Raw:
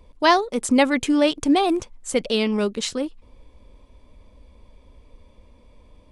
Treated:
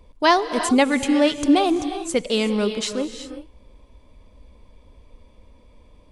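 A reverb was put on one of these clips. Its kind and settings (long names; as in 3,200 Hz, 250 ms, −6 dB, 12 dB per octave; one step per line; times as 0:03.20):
reverb whose tail is shaped and stops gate 400 ms rising, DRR 9 dB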